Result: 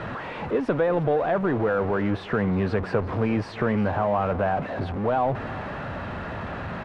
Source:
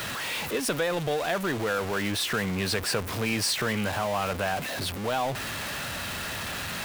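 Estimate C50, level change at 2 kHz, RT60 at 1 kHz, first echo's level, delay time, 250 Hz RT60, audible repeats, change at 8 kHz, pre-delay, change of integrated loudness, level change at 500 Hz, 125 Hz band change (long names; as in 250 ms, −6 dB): no reverb audible, −3.0 dB, no reverb audible, −17.5 dB, 355 ms, no reverb audible, 1, below −25 dB, no reverb audible, +2.5 dB, +6.0 dB, +6.0 dB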